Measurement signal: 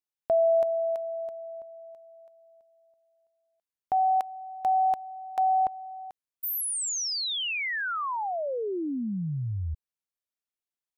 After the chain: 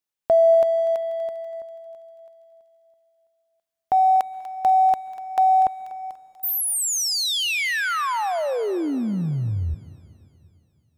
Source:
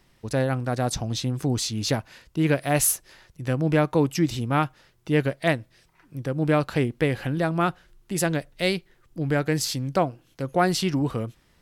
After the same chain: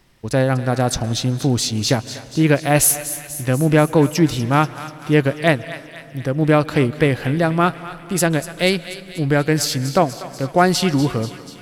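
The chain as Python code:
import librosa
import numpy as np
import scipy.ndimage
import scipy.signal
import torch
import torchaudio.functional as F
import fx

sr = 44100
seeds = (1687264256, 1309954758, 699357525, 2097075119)

p1 = np.sign(x) * np.maximum(np.abs(x) - 10.0 ** (-40.5 / 20.0), 0.0)
p2 = x + F.gain(torch.from_numpy(p1), -10.0).numpy()
p3 = fx.echo_thinned(p2, sr, ms=243, feedback_pct=66, hz=1200.0, wet_db=-12)
p4 = fx.rev_plate(p3, sr, seeds[0], rt60_s=2.8, hf_ratio=0.75, predelay_ms=115, drr_db=18.5)
y = F.gain(torch.from_numpy(p4), 4.5).numpy()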